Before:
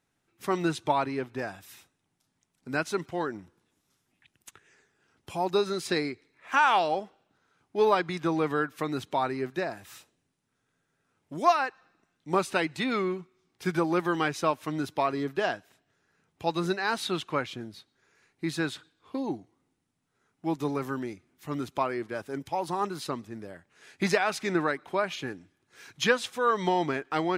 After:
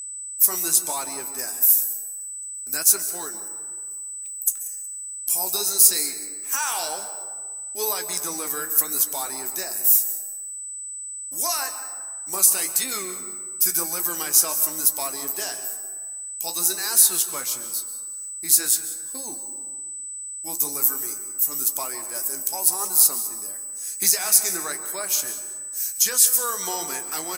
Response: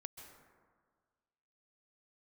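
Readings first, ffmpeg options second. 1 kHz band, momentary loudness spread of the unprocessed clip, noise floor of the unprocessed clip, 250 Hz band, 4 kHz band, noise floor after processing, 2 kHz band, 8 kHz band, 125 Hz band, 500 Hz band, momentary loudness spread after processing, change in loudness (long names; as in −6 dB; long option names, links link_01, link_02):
−6.0 dB, 13 LU, −78 dBFS, −10.5 dB, +8.0 dB, −35 dBFS, −4.0 dB, +27.5 dB, below −10 dB, −8.0 dB, 15 LU, +8.0 dB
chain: -filter_complex "[0:a]aemphasis=mode=production:type=riaa,agate=range=-33dB:threshold=-54dB:ratio=3:detection=peak,highshelf=frequency=10000:gain=8.5,alimiter=limit=-15dB:level=0:latency=1,aexciter=amount=6.6:drive=6.2:freq=4900,flanger=delay=9.5:depth=7.6:regen=-49:speed=1:shape=triangular,aeval=exprs='val(0)+0.0282*sin(2*PI*8000*n/s)':channel_layout=same,aecho=1:1:185|370:0.119|0.0333,asplit=2[link_01][link_02];[1:a]atrim=start_sample=2205[link_03];[link_02][link_03]afir=irnorm=-1:irlink=0,volume=8dB[link_04];[link_01][link_04]amix=inputs=2:normalize=0,volume=-8dB"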